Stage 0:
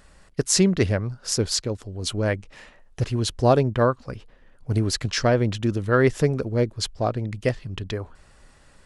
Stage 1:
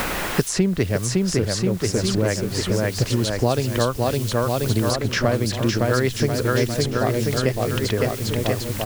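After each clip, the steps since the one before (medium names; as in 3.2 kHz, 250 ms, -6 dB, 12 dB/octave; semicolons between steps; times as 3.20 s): bouncing-ball echo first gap 560 ms, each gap 0.85×, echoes 5; added noise white -45 dBFS; three bands compressed up and down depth 100%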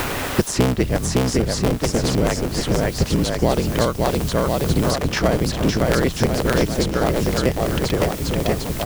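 cycle switcher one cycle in 3, inverted; in parallel at -11 dB: sample-rate reducer 2.6 kHz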